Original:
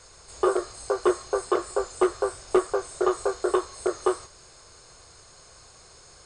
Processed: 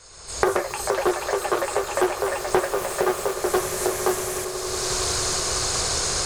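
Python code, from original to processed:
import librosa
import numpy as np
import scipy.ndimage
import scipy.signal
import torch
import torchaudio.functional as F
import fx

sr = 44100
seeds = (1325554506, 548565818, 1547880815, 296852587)

p1 = fx.recorder_agc(x, sr, target_db=-17.0, rise_db_per_s=31.0, max_gain_db=30)
p2 = fx.echo_pitch(p1, sr, ms=273, semitones=7, count=3, db_per_echo=-6.0)
p3 = fx.peak_eq(p2, sr, hz=7000.0, db=3.5, octaves=2.3)
p4 = p3 + fx.echo_swell(p3, sr, ms=92, loudest=8, wet_db=-18.0, dry=0)
y = fx.doppler_dist(p4, sr, depth_ms=0.34)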